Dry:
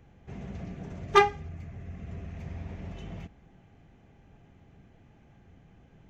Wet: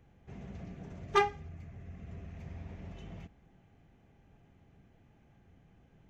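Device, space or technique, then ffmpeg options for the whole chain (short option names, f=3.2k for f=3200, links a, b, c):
parallel distortion: -filter_complex "[0:a]asplit=2[a][b];[b]asoftclip=type=hard:threshold=-19dB,volume=-9dB[c];[a][c]amix=inputs=2:normalize=0,volume=-8.5dB"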